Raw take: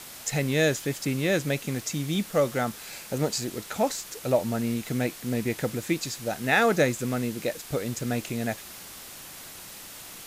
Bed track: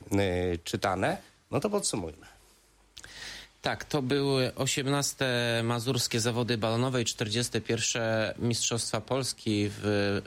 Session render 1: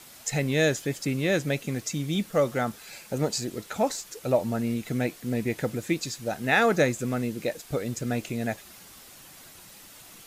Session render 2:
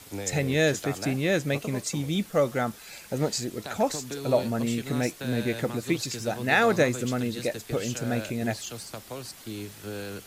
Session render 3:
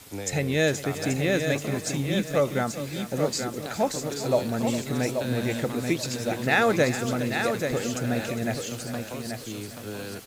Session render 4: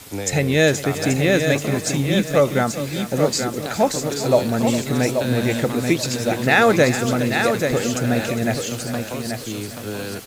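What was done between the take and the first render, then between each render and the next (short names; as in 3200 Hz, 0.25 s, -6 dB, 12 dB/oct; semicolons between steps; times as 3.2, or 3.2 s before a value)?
denoiser 7 dB, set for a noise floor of -43 dBFS
add bed track -9 dB
feedback echo 0.833 s, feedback 25%, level -6.5 dB; lo-fi delay 0.404 s, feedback 35%, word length 7-bit, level -13 dB
gain +7 dB; limiter -3 dBFS, peak gain reduction 1.5 dB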